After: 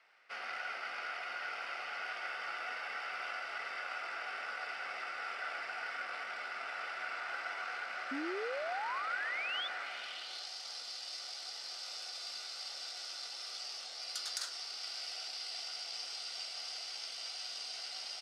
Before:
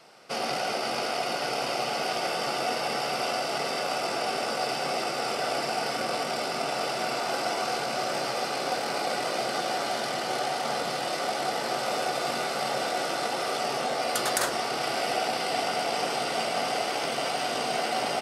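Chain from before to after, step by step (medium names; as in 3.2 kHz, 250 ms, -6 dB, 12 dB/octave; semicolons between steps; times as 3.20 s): band-pass sweep 1.9 kHz -> 4.9 kHz, 9.76–10.50 s; dynamic bell 1.4 kHz, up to +7 dB, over -57 dBFS, Q 4.7; painted sound rise, 8.11–9.68 s, 260–3600 Hz -35 dBFS; trim -4.5 dB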